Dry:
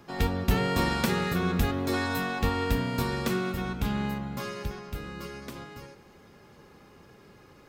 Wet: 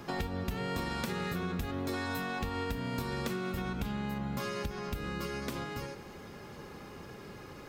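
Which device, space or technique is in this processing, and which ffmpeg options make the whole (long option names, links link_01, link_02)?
serial compression, peaks first: -af "acompressor=threshold=-34dB:ratio=5,acompressor=threshold=-42dB:ratio=2,volume=6.5dB"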